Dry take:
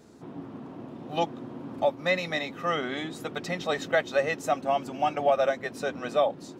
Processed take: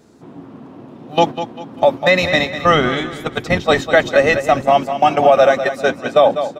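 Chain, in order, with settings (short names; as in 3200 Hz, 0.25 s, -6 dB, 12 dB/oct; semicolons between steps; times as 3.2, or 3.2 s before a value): 2.21–4.67 octaver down 1 oct, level -4 dB; gate -31 dBFS, range -11 dB; feedback echo 0.198 s, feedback 35%, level -12 dB; maximiser +16 dB; gain -1 dB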